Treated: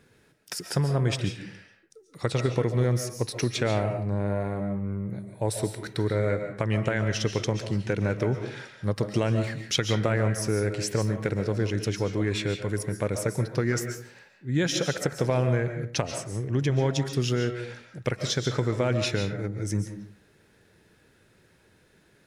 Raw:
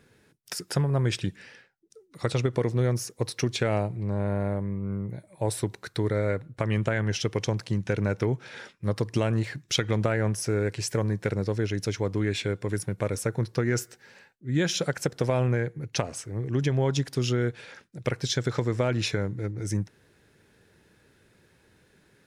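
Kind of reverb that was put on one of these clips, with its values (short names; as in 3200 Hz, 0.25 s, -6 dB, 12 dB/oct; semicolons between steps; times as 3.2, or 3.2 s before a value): digital reverb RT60 0.48 s, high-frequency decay 0.65×, pre-delay 0.1 s, DRR 6.5 dB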